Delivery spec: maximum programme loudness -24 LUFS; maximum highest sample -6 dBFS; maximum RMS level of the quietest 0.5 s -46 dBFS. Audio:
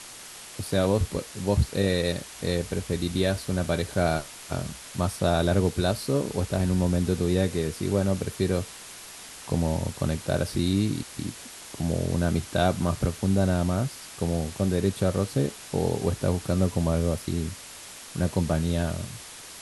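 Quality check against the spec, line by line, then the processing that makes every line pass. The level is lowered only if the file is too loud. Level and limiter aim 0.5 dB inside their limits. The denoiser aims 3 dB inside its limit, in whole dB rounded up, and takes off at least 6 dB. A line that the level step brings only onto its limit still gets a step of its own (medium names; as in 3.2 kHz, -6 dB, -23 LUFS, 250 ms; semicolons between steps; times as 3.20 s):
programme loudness -27.0 LUFS: pass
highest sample -9.5 dBFS: pass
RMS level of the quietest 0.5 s -43 dBFS: fail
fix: noise reduction 6 dB, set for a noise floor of -43 dBFS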